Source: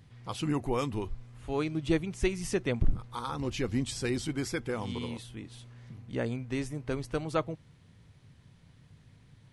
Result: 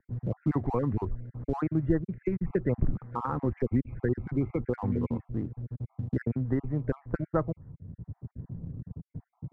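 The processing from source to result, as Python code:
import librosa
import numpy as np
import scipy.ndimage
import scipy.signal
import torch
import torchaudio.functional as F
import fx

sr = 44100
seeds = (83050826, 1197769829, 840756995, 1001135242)

p1 = fx.spec_dropout(x, sr, seeds[0], share_pct=38)
p2 = fx.env_lowpass(p1, sr, base_hz=360.0, full_db=-26.5)
p3 = scipy.signal.sosfilt(scipy.signal.butter(8, 2000.0, 'lowpass', fs=sr, output='sos'), p2)
p4 = fx.low_shelf(p3, sr, hz=400.0, db=7.5)
p5 = np.sign(p4) * np.maximum(np.abs(p4) - 10.0 ** (-47.5 / 20.0), 0.0)
p6 = p4 + F.gain(torch.from_numpy(p5), -10.0).numpy()
p7 = fx.band_squash(p6, sr, depth_pct=70)
y = F.gain(torch.from_numpy(p7), -2.0).numpy()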